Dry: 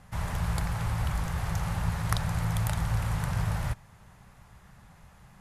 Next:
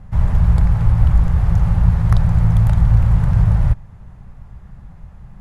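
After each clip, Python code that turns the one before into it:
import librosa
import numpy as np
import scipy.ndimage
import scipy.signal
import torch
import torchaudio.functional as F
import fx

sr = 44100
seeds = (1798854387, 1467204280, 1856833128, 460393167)

y = fx.tilt_eq(x, sr, slope=-3.5)
y = y * 10.0 ** (3.5 / 20.0)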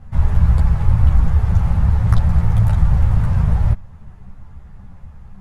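y = fx.ensemble(x, sr)
y = y * 10.0 ** (3.0 / 20.0)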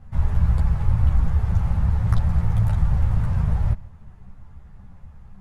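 y = x + 10.0 ** (-22.5 / 20.0) * np.pad(x, (int(144 * sr / 1000.0), 0))[:len(x)]
y = y * 10.0 ** (-5.5 / 20.0)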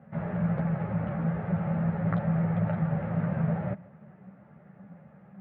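y = fx.cabinet(x, sr, low_hz=170.0, low_slope=24, high_hz=2200.0, hz=(170.0, 580.0, 1000.0), db=(7, 9, -9))
y = y * 10.0 ** (2.0 / 20.0)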